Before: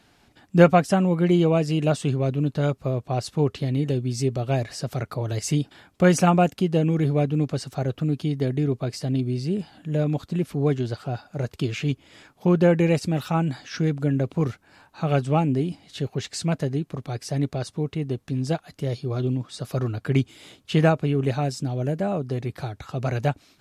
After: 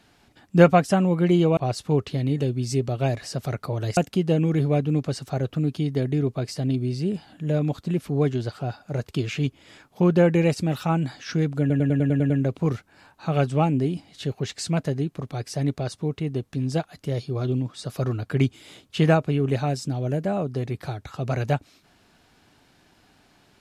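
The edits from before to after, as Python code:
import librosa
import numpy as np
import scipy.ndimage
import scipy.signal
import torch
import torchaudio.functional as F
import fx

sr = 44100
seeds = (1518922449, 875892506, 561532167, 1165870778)

y = fx.edit(x, sr, fx.cut(start_s=1.57, length_s=1.48),
    fx.cut(start_s=5.45, length_s=0.97),
    fx.stutter(start_s=14.05, slice_s=0.1, count=8), tone=tone)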